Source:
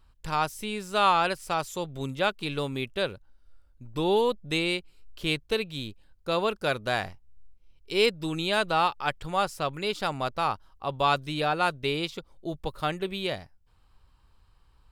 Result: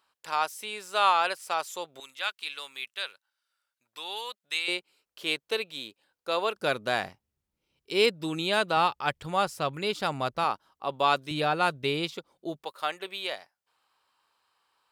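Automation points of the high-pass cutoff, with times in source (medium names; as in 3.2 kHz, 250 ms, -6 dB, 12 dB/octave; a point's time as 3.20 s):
570 Hz
from 2.00 s 1.5 kHz
from 4.68 s 440 Hz
from 6.56 s 170 Hz
from 8.77 s 76 Hz
from 10.44 s 230 Hz
from 11.31 s 100 Hz
from 12.13 s 230 Hz
from 12.64 s 630 Hz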